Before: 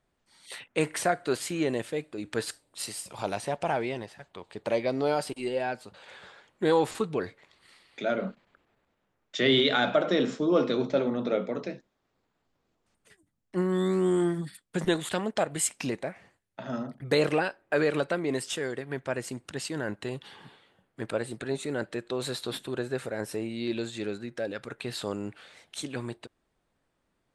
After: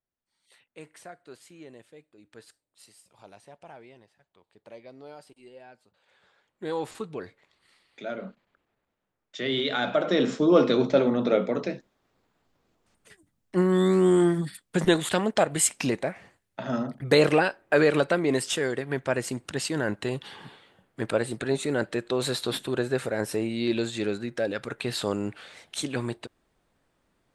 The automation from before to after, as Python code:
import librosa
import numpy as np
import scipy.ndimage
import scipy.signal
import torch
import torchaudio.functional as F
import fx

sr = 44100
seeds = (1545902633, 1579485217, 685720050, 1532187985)

y = fx.gain(x, sr, db=fx.line((6.01, -18.5), (6.85, -6.0), (9.47, -6.0), (10.43, 5.0)))